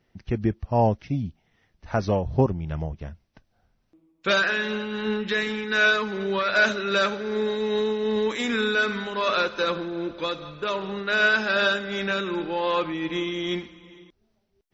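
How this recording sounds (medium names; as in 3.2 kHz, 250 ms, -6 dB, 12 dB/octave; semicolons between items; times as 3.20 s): tremolo triangle 2.6 Hz, depth 40%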